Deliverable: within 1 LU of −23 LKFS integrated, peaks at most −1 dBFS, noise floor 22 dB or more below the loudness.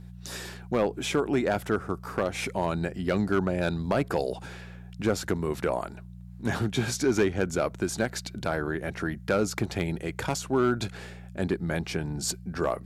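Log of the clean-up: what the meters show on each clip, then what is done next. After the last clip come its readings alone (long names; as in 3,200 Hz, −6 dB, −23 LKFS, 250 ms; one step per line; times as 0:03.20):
share of clipped samples 0.4%; peaks flattened at −16.0 dBFS; mains hum 60 Hz; hum harmonics up to 180 Hz; level of the hum −42 dBFS; integrated loudness −29.0 LKFS; sample peak −16.0 dBFS; target loudness −23.0 LKFS
→ clipped peaks rebuilt −16 dBFS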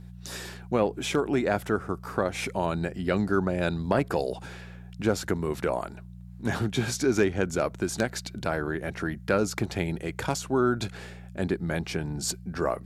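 share of clipped samples 0.0%; mains hum 60 Hz; hum harmonics up to 180 Hz; level of the hum −42 dBFS
→ hum removal 60 Hz, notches 3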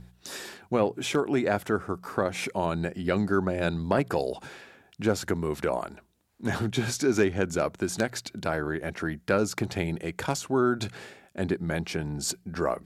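mains hum none found; integrated loudness −28.5 LKFS; sample peak −7.5 dBFS; target loudness −23.0 LKFS
→ level +5.5 dB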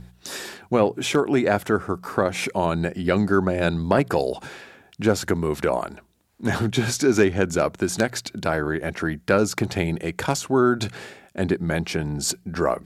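integrated loudness −23.5 LKFS; sample peak −2.0 dBFS; background noise floor −56 dBFS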